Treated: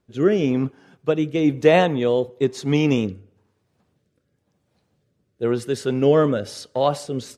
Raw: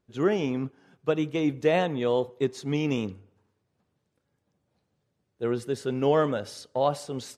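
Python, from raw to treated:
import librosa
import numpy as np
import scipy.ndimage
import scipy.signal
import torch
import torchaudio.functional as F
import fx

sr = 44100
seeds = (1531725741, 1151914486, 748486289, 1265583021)

y = fx.rotary(x, sr, hz=1.0)
y = y * librosa.db_to_amplitude(8.5)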